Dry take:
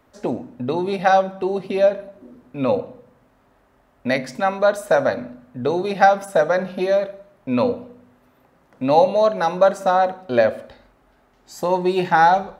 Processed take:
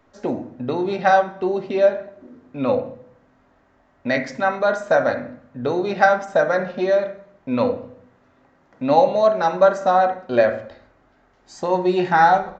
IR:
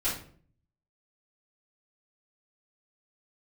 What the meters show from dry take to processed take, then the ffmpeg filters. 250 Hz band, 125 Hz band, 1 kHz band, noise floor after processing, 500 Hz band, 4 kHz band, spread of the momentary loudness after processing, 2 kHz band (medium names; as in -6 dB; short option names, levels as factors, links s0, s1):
0.0 dB, -1.0 dB, -0.5 dB, -59 dBFS, 0.0 dB, -2.0 dB, 13 LU, +1.5 dB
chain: -filter_complex "[0:a]asplit=2[s0][s1];[s1]highshelf=f=2900:t=q:w=3:g=-13[s2];[1:a]atrim=start_sample=2205[s3];[s2][s3]afir=irnorm=-1:irlink=0,volume=0.188[s4];[s0][s4]amix=inputs=2:normalize=0,aresample=16000,aresample=44100,volume=0.794"